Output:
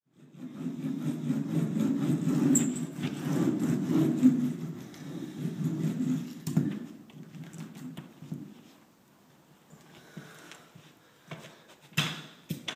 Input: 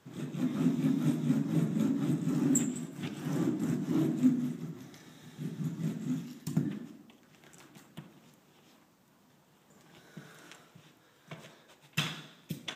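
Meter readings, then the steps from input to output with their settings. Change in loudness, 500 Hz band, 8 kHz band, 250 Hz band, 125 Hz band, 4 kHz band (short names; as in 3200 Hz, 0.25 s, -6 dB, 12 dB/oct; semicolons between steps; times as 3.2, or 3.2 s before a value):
+2.5 dB, +2.5 dB, +3.5 dB, +2.5 dB, +2.0 dB, +3.5 dB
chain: opening faded in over 2.31 s; outdoor echo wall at 300 m, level -12 dB; gain +3.5 dB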